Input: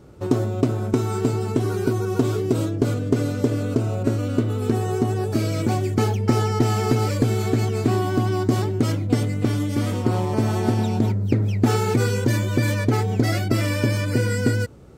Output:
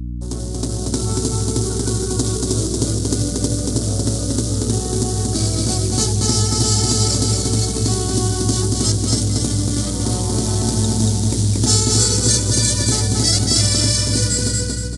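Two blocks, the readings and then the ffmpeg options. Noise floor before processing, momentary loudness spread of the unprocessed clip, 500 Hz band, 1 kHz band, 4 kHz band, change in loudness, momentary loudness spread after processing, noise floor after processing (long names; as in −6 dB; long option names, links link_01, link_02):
−26 dBFS, 3 LU, −1.5 dB, −2.5 dB, +15.0 dB, +4.5 dB, 6 LU, −24 dBFS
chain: -filter_complex "[0:a]anlmdn=100,bandreject=frequency=60:width_type=h:width=6,bandreject=frequency=120:width_type=h:width=6,bandreject=frequency=180:width_type=h:width=6,bandreject=frequency=240:width_type=h:width=6,bandreject=frequency=300:width_type=h:width=6,bandreject=frequency=360:width_type=h:width=6,bandreject=frequency=420:width_type=h:width=6,bandreject=frequency=480:width_type=h:width=6,bandreject=frequency=540:width_type=h:width=6,asoftclip=type=tanh:threshold=-11dB,dynaudnorm=framelen=150:gausssize=9:maxgain=16dB,acrusher=bits=6:mode=log:mix=0:aa=0.000001,asplit=2[link_01][link_02];[link_02]aecho=0:1:232|464|696|928|1160:0.708|0.262|0.0969|0.0359|0.0133[link_03];[link_01][link_03]amix=inputs=2:normalize=0,aexciter=amount=13.6:drive=3.3:freq=3800,aeval=exprs='val(0)+0.178*(sin(2*PI*60*n/s)+sin(2*PI*2*60*n/s)/2+sin(2*PI*3*60*n/s)/3+sin(2*PI*4*60*n/s)/4+sin(2*PI*5*60*n/s)/5)':channel_layout=same,acrossover=split=350|3000[link_04][link_05][link_06];[link_05]acompressor=threshold=-22dB:ratio=2[link_07];[link_04][link_07][link_06]amix=inputs=3:normalize=0,aresample=22050,aresample=44100,volume=-9.5dB"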